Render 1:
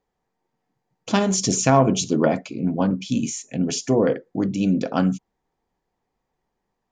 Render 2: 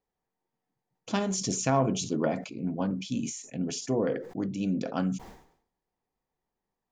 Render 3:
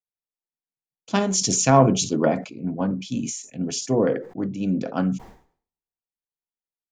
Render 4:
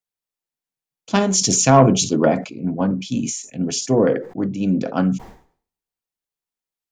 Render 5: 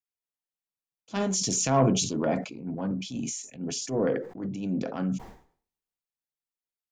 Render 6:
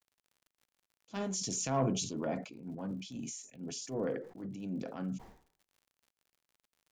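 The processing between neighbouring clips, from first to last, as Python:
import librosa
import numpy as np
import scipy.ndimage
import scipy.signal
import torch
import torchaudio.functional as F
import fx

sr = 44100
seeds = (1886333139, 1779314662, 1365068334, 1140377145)

y1 = fx.sustainer(x, sr, db_per_s=95.0)
y1 = y1 * librosa.db_to_amplitude(-9.0)
y2 = fx.band_widen(y1, sr, depth_pct=70)
y2 = y2 * librosa.db_to_amplitude(6.0)
y3 = 10.0 ** (-4.5 / 20.0) * np.tanh(y2 / 10.0 ** (-4.5 / 20.0))
y3 = y3 * librosa.db_to_amplitude(4.5)
y4 = fx.transient(y3, sr, attack_db=-8, sustain_db=4)
y4 = y4 * librosa.db_to_amplitude(-9.0)
y5 = fx.dmg_crackle(y4, sr, seeds[0], per_s=70.0, level_db=-46.0)
y5 = y5 * librosa.db_to_amplitude(-9.0)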